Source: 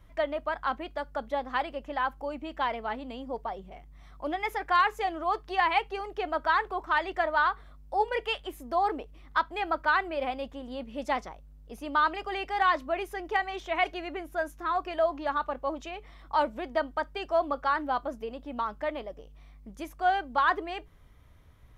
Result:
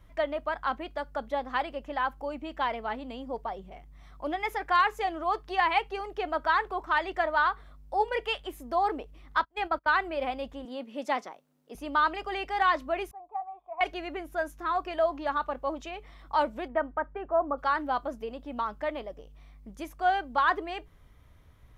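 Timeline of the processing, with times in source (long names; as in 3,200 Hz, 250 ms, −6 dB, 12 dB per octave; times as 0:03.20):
0:09.40–0:09.98: noise gate −36 dBFS, range −29 dB
0:10.65–0:11.75: high-pass filter 210 Hz 24 dB per octave
0:13.11–0:13.81: formant resonators in series a
0:16.67–0:17.57: low-pass filter 2,400 Hz → 1,400 Hz 24 dB per octave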